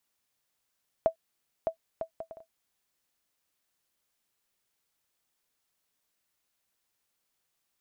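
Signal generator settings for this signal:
bouncing ball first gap 0.61 s, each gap 0.56, 653 Hz, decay 98 ms −14 dBFS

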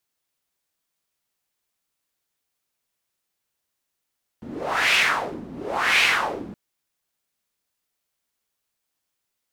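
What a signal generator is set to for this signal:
wind from filtered noise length 2.12 s, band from 220 Hz, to 2,500 Hz, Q 2.8, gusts 2, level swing 18 dB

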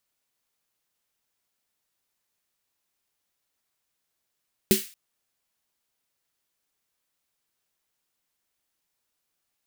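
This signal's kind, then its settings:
synth snare length 0.23 s, tones 210 Hz, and 380 Hz, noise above 1,900 Hz, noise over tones −5.5 dB, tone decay 0.16 s, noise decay 0.39 s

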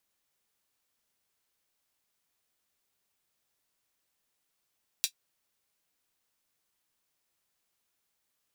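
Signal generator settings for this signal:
closed synth hi-hat, high-pass 3,500 Hz, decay 0.09 s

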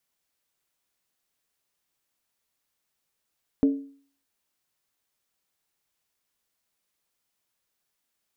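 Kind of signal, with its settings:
struck skin, lowest mode 277 Hz, decay 0.48 s, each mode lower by 11 dB, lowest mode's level −14 dB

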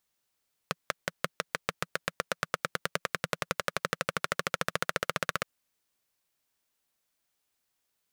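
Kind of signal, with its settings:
pulse-train model of a single-cylinder engine, changing speed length 4.72 s, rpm 600, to 1,900, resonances 170/530/1,300 Hz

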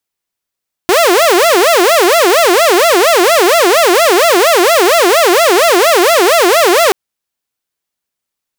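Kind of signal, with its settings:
siren wail 343–688 Hz 4.3 per second saw −3.5 dBFS 6.03 s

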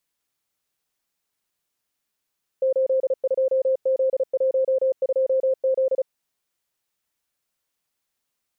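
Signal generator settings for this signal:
Morse code "82Z12Z" 35 words per minute 526 Hz −17 dBFS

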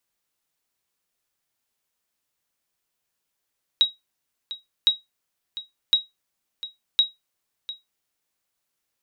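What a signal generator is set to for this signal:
ping with an echo 3,820 Hz, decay 0.18 s, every 1.06 s, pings 4, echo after 0.70 s, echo −15.5 dB −9 dBFS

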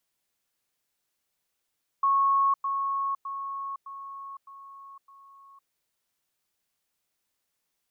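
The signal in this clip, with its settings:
level staircase 1,100 Hz −19.5 dBFS, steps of −6 dB, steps 6, 0.51 s 0.10 s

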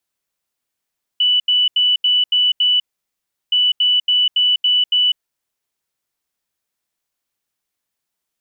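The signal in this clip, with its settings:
beeps in groups sine 2,970 Hz, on 0.20 s, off 0.08 s, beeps 6, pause 0.72 s, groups 2, −11.5 dBFS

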